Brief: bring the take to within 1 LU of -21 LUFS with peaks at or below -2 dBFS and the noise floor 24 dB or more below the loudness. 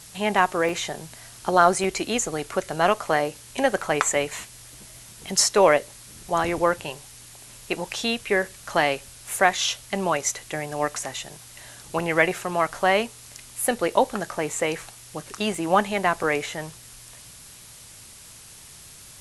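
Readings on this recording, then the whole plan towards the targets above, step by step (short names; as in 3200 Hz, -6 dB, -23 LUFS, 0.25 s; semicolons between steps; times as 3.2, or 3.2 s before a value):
dropouts 6; longest dropout 2.6 ms; noise floor -46 dBFS; noise floor target -48 dBFS; loudness -24.0 LUFS; peak -2.0 dBFS; loudness target -21.0 LUFS
-> interpolate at 0.69/1.84/3.82/11.99/15.55/16.23, 2.6 ms; noise print and reduce 6 dB; gain +3 dB; limiter -2 dBFS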